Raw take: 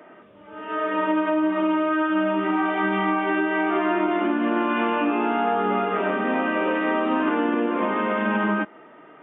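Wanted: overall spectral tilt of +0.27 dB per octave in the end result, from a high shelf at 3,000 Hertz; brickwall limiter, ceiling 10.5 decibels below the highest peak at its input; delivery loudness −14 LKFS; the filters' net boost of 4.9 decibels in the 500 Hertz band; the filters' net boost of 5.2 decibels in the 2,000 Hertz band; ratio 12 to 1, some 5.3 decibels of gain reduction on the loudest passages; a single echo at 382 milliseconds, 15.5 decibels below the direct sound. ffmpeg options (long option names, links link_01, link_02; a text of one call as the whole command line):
ffmpeg -i in.wav -af "equalizer=frequency=500:width_type=o:gain=6.5,equalizer=frequency=2000:width_type=o:gain=8,highshelf=frequency=3000:gain=-4.5,acompressor=threshold=-20dB:ratio=12,alimiter=limit=-22.5dB:level=0:latency=1,aecho=1:1:382:0.168,volume=16dB" out.wav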